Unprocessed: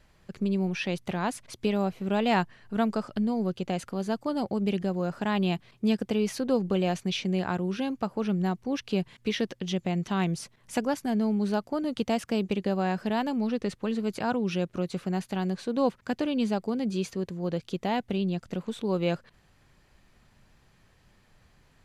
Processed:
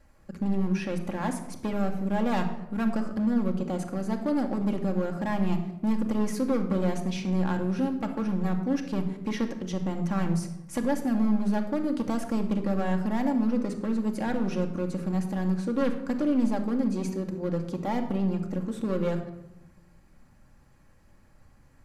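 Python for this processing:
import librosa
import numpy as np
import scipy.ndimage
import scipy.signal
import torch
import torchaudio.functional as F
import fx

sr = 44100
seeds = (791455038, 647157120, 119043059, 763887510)

y = fx.peak_eq(x, sr, hz=3400.0, db=-11.5, octaves=1.1)
y = np.clip(y, -10.0 ** (-25.0 / 20.0), 10.0 ** (-25.0 / 20.0))
y = fx.room_shoebox(y, sr, seeds[0], volume_m3=3200.0, walls='furnished', distance_m=2.3)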